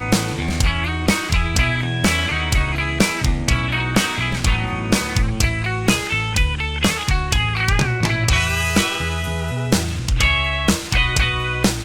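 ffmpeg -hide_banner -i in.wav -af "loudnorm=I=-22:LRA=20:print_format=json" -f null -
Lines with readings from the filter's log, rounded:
"input_i" : "-19.0",
"input_tp" : "-2.5",
"input_lra" : "0.6",
"input_thresh" : "-29.0",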